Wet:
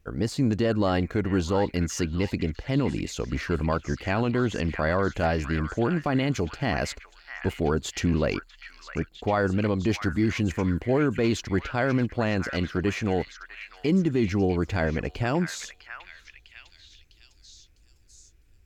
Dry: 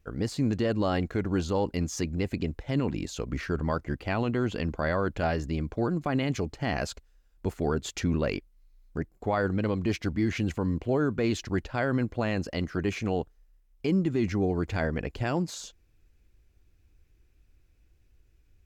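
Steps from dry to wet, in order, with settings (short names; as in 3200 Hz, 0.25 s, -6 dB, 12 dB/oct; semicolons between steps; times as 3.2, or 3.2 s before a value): delay with a stepping band-pass 0.653 s, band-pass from 1700 Hz, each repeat 0.7 oct, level -5 dB; gain +3 dB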